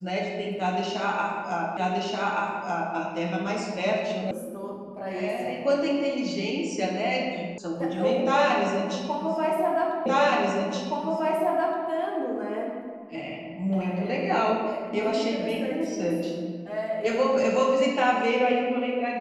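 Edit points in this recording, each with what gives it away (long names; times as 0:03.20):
0:01.77: the same again, the last 1.18 s
0:04.31: cut off before it has died away
0:07.58: cut off before it has died away
0:10.06: the same again, the last 1.82 s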